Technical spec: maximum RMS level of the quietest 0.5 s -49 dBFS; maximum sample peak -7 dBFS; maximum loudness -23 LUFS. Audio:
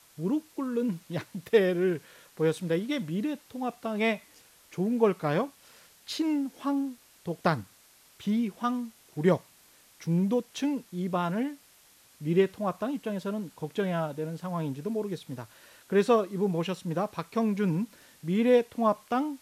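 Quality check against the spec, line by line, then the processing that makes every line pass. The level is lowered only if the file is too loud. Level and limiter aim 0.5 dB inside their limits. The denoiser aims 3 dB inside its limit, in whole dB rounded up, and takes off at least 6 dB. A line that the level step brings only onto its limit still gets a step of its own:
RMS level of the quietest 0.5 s -59 dBFS: pass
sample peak -10.0 dBFS: pass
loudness -29.5 LUFS: pass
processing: none needed

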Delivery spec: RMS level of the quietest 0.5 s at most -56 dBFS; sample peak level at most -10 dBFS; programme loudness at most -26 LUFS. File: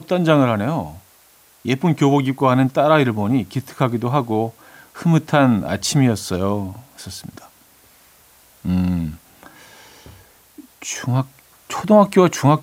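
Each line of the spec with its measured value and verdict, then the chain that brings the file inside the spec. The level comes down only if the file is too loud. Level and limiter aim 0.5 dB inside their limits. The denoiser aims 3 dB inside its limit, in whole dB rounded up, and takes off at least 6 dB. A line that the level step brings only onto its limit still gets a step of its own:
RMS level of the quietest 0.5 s -52 dBFS: fail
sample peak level -2.0 dBFS: fail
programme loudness -18.0 LUFS: fail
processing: trim -8.5 dB

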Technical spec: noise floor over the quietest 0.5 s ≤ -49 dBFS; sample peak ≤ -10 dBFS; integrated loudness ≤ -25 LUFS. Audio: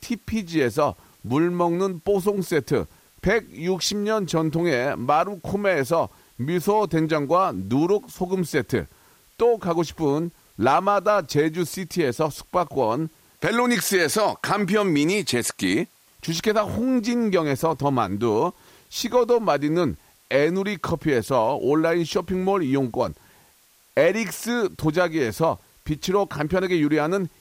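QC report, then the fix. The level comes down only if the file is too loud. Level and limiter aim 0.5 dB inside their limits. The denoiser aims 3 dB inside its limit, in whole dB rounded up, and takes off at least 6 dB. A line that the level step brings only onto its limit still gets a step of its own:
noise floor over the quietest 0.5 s -58 dBFS: pass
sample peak -7.5 dBFS: fail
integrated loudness -23.0 LUFS: fail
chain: trim -2.5 dB; peak limiter -10.5 dBFS

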